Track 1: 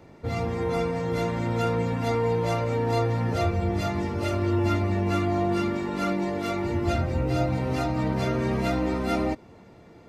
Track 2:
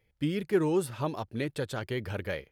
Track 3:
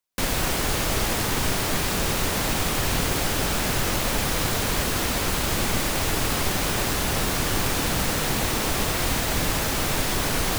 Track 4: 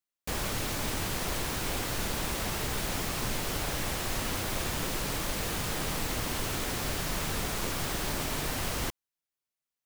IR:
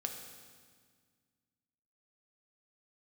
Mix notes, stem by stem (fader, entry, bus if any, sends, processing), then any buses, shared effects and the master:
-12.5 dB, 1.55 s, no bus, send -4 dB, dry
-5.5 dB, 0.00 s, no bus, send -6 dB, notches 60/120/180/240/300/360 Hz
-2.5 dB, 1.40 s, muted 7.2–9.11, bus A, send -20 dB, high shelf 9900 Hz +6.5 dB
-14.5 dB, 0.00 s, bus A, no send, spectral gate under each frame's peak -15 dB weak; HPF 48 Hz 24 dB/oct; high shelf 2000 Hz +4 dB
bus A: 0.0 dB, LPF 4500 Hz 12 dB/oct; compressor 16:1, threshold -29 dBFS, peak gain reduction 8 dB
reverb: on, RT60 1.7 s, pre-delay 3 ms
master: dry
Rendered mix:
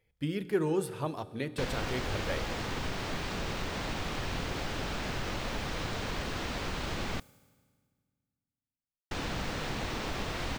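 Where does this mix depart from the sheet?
stem 1: muted; stem 3 -2.5 dB -> -10.0 dB; stem 4: muted

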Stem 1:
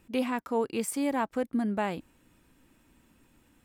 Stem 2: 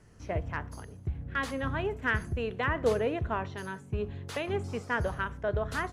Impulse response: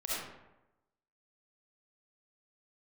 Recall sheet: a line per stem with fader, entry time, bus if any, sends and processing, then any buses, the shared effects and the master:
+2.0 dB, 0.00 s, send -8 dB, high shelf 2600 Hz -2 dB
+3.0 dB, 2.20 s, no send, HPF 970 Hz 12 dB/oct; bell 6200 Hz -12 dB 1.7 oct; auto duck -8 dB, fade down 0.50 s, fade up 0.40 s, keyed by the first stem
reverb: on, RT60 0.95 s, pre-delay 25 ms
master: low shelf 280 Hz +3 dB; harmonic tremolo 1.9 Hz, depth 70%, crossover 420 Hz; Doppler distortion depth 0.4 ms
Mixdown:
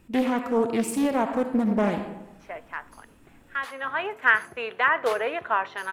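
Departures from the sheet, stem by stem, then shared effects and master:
stem 2 +3.0 dB -> +13.0 dB; master: missing harmonic tremolo 1.9 Hz, depth 70%, crossover 420 Hz

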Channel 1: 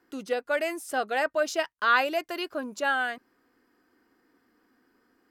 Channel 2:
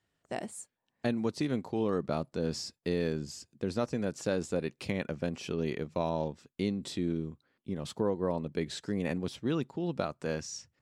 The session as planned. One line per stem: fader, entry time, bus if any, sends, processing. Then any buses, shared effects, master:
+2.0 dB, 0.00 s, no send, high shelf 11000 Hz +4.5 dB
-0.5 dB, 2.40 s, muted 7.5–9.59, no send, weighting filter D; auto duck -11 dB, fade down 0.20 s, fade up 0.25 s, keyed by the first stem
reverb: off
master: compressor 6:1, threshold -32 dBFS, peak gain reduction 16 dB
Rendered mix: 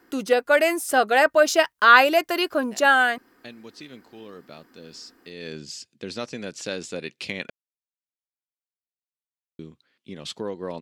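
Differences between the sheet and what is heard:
stem 1 +2.0 dB -> +9.0 dB; master: missing compressor 6:1, threshold -32 dBFS, peak gain reduction 16 dB

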